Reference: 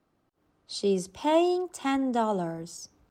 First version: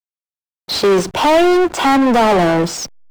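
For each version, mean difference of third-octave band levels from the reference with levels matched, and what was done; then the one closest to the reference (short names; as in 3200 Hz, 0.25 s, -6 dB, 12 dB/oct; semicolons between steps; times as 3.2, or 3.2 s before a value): 9.0 dB: in parallel at -2.5 dB: compressor, threshold -36 dBFS, peak gain reduction 17 dB; on the sum: overdrive pedal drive 32 dB, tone 2200 Hz, clips at -11.5 dBFS; backlash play -25 dBFS; gain +8 dB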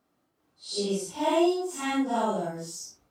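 5.5 dB: phase scrambler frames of 0.2 s; HPF 150 Hz 6 dB/oct; high shelf 4500 Hz +6 dB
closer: second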